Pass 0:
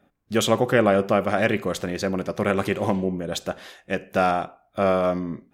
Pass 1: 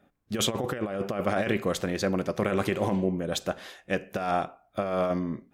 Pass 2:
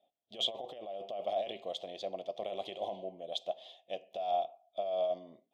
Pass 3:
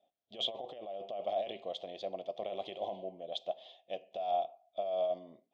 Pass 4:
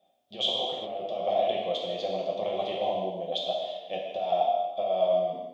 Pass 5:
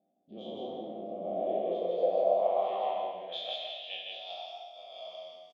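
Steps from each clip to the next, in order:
negative-ratio compressor -22 dBFS, ratio -0.5; gain -3.5 dB
double band-pass 1500 Hz, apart 2.3 oct
air absorption 100 m
non-linear reverb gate 0.42 s falling, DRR -3 dB; gain +5.5 dB
spectral dilation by 60 ms; loudspeakers at several distances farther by 23 m -10 dB, 56 m -2 dB; band-pass sweep 260 Hz -> 5400 Hz, 1.34–4.56

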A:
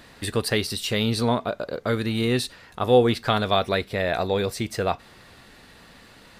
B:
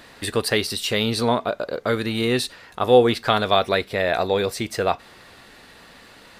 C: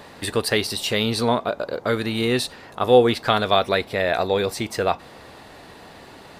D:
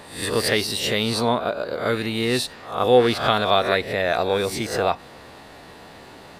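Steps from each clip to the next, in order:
tone controls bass -6 dB, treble -1 dB; gain +3.5 dB
band noise 66–950 Hz -46 dBFS
spectral swells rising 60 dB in 0.48 s; gain -1.5 dB

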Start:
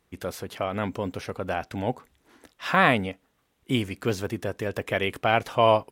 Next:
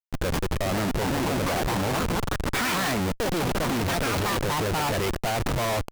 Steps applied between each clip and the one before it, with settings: echoes that change speed 0.562 s, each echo +5 st, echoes 3; Schmitt trigger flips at -34 dBFS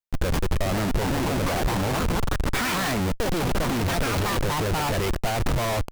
low shelf 78 Hz +8 dB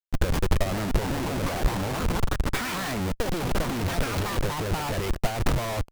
upward expander 2.5:1, over -32 dBFS; gain +4 dB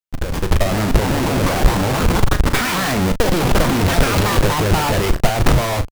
AGC gain up to 12 dB; doubler 38 ms -10 dB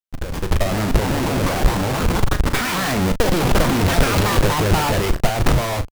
AGC; gain -4.5 dB

